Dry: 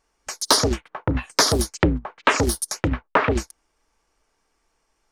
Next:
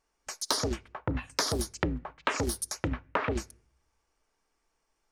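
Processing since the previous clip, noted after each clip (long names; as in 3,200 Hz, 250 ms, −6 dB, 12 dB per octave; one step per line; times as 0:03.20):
downward compressor, threshold −17 dBFS, peak gain reduction 6 dB
on a send at −23 dB: convolution reverb RT60 0.55 s, pre-delay 5 ms
on the sum: level −7.5 dB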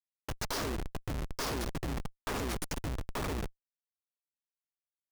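echo with shifted repeats 144 ms, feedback 38%, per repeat −57 Hz, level −7.5 dB
comparator with hysteresis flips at −31 dBFS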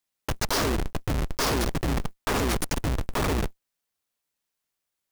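one scale factor per block 5 bits
in parallel at +2 dB: brickwall limiter −40 dBFS, peak gain reduction 12 dB
on the sum: level +6 dB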